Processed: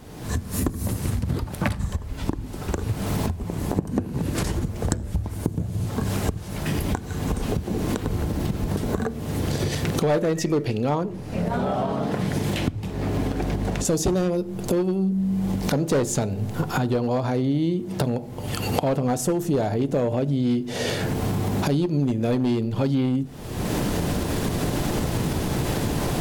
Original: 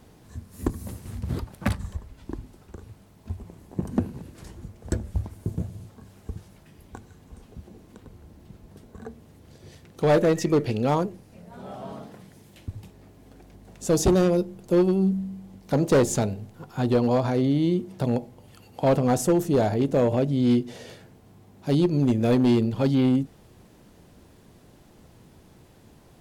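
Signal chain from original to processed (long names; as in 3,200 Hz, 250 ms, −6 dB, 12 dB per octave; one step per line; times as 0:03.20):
camcorder AGC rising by 47 dB per second
0:10.89–0:13.85: high-shelf EQ 6,500 Hz −10 dB
downward compressor 4 to 1, threshold −28 dBFS, peak gain reduction 12 dB
convolution reverb RT60 0.95 s, pre-delay 7 ms, DRR 18 dB
level +7 dB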